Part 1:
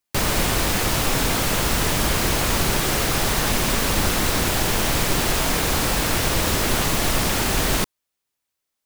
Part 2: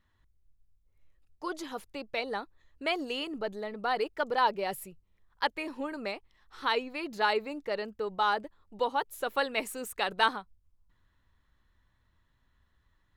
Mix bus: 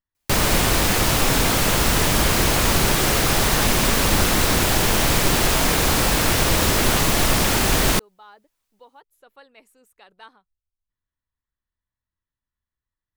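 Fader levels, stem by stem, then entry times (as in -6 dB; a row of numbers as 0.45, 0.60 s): +2.5, -19.5 dB; 0.15, 0.00 s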